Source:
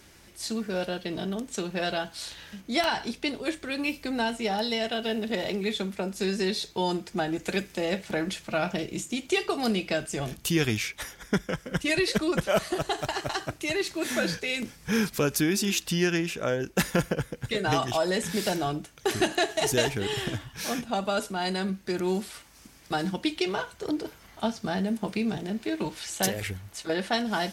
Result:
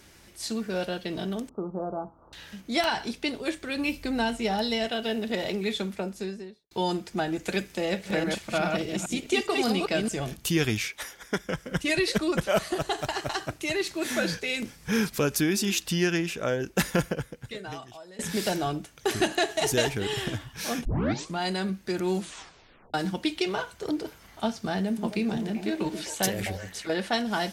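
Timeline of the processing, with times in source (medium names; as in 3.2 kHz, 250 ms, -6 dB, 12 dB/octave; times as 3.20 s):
1.49–2.33 s: rippled Chebyshev low-pass 1.3 kHz, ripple 3 dB
3.75–4.86 s: bass shelf 110 Hz +11.5 dB
5.86–6.71 s: studio fade out
7.83–10.13 s: chunks repeated in reverse 205 ms, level -3 dB
10.88–11.45 s: tone controls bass -10 dB, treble 0 dB
17.00–18.19 s: fade out quadratic, to -22 dB
20.85 s: tape start 0.53 s
22.15 s: tape stop 0.79 s
24.85–26.88 s: repeats whose band climbs or falls 128 ms, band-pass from 250 Hz, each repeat 1.4 oct, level -3.5 dB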